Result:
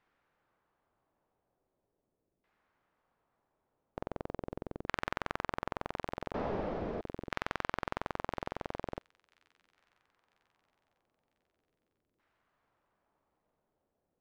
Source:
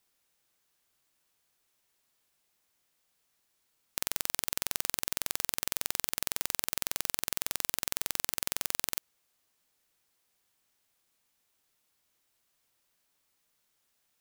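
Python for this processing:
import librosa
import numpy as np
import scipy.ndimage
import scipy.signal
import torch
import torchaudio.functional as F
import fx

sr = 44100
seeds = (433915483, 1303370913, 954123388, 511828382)

y = fx.delta_mod(x, sr, bps=32000, step_db=-27.0, at=(6.34, 7.01))
y = fx.filter_lfo_lowpass(y, sr, shape='saw_down', hz=0.41, low_hz=380.0, high_hz=1700.0, q=1.2)
y = fx.echo_wet_highpass(y, sr, ms=997, feedback_pct=43, hz=2700.0, wet_db=-19.5)
y = y * librosa.db_to_amplitude(6.0)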